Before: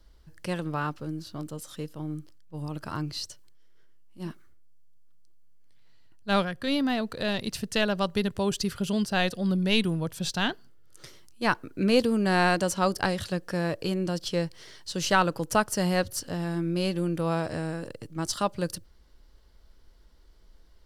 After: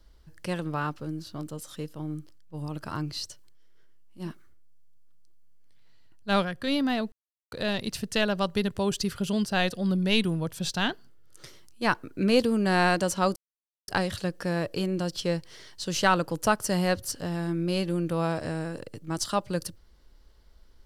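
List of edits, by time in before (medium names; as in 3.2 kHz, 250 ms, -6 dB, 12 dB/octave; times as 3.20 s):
7.12 s: insert silence 0.40 s
12.96 s: insert silence 0.52 s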